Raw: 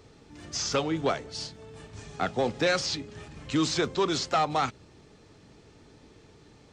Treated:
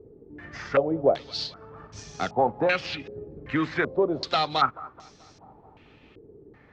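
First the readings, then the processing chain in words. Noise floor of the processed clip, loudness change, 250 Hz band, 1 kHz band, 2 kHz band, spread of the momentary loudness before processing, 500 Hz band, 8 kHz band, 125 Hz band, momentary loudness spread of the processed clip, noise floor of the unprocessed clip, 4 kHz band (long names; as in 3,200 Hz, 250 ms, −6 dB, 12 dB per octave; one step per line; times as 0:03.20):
−55 dBFS, +2.5 dB, +0.5 dB, +3.0 dB, +3.0 dB, 18 LU, +4.0 dB, −13.0 dB, −1.0 dB, 19 LU, −56 dBFS, −1.0 dB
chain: transient designer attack +1 dB, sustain −3 dB
feedback echo with a high-pass in the loop 216 ms, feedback 61%, high-pass 200 Hz, level −22 dB
low-pass on a step sequencer 2.6 Hz 410–5,800 Hz
level −1 dB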